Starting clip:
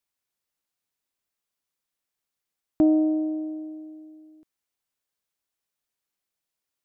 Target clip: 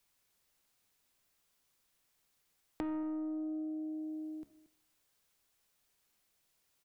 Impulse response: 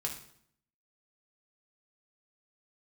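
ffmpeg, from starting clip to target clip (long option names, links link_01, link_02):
-filter_complex "[0:a]lowshelf=frequency=69:gain=7.5,bandreject=frequency=70.4:width_type=h:width=4,bandreject=frequency=140.8:width_type=h:width=4,bandreject=frequency=211.2:width_type=h:width=4,bandreject=frequency=281.6:width_type=h:width=4,bandreject=frequency=352:width_type=h:width=4,bandreject=frequency=422.4:width_type=h:width=4,bandreject=frequency=492.8:width_type=h:width=4,bandreject=frequency=563.2:width_type=h:width=4,bandreject=frequency=633.6:width_type=h:width=4,bandreject=frequency=704:width_type=h:width=4,bandreject=frequency=774.4:width_type=h:width=4,bandreject=frequency=844.8:width_type=h:width=4,bandreject=frequency=915.2:width_type=h:width=4,bandreject=frequency=985.6:width_type=h:width=4,bandreject=frequency=1056:width_type=h:width=4,bandreject=frequency=1126.4:width_type=h:width=4,bandreject=frequency=1196.8:width_type=h:width=4,bandreject=frequency=1267.2:width_type=h:width=4,bandreject=frequency=1337.6:width_type=h:width=4,bandreject=frequency=1408:width_type=h:width=4,bandreject=frequency=1478.4:width_type=h:width=4,bandreject=frequency=1548.8:width_type=h:width=4,bandreject=frequency=1619.2:width_type=h:width=4,bandreject=frequency=1689.6:width_type=h:width=4,bandreject=frequency=1760:width_type=h:width=4,bandreject=frequency=1830.4:width_type=h:width=4,bandreject=frequency=1900.8:width_type=h:width=4,bandreject=frequency=1971.2:width_type=h:width=4,acrossover=split=140[link_01][link_02];[link_02]asoftclip=type=tanh:threshold=-23dB[link_03];[link_01][link_03]amix=inputs=2:normalize=0,aecho=1:1:229:0.119,asplit=2[link_04][link_05];[1:a]atrim=start_sample=2205[link_06];[link_05][link_06]afir=irnorm=-1:irlink=0,volume=-15dB[link_07];[link_04][link_07]amix=inputs=2:normalize=0,alimiter=level_in=5dB:limit=-24dB:level=0:latency=1,volume=-5dB,acompressor=threshold=-46dB:ratio=5,volume=7.5dB"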